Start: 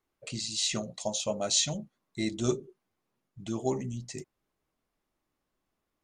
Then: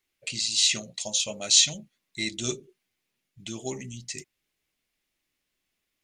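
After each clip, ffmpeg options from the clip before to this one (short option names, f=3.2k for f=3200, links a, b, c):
-af "highshelf=f=1.6k:t=q:w=1.5:g=11,volume=-4dB"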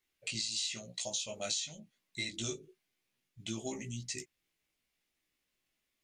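-af "acompressor=threshold=-30dB:ratio=16,flanger=delay=16:depth=2.8:speed=0.95"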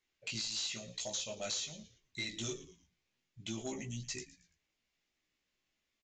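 -filter_complex "[0:a]asplit=4[a][b][c][d];[b]adelay=113,afreqshift=-99,volume=-17.5dB[e];[c]adelay=226,afreqshift=-198,volume=-26.1dB[f];[d]adelay=339,afreqshift=-297,volume=-34.8dB[g];[a][e][f][g]amix=inputs=4:normalize=0,aresample=16000,asoftclip=type=tanh:threshold=-30.5dB,aresample=44100"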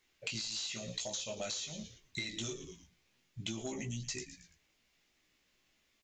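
-af "acompressor=threshold=-46dB:ratio=12,volume=9.5dB"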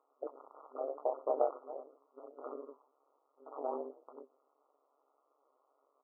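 -af "afftfilt=real='re*between(b*sr/4096,390,1300)':imag='im*between(b*sr/4096,390,1300)':win_size=4096:overlap=0.75,tremolo=f=140:d=0.919,volume=15dB"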